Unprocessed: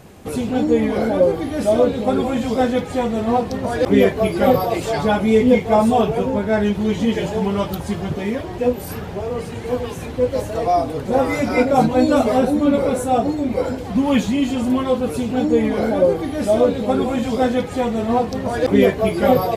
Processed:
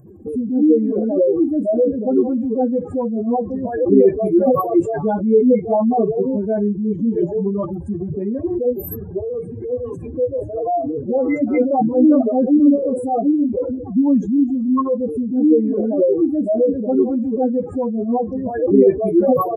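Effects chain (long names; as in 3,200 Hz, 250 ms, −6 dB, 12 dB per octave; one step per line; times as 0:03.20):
expanding power law on the bin magnitudes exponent 2.7
high shelf with overshoot 5,900 Hz +13 dB, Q 3
hollow resonant body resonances 340/1,100/1,600 Hz, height 15 dB
level −3 dB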